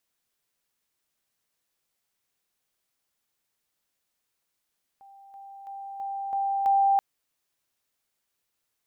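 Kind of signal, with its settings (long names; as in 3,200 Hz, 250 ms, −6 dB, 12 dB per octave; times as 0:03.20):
level staircase 789 Hz −48 dBFS, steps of 6 dB, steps 6, 0.33 s 0.00 s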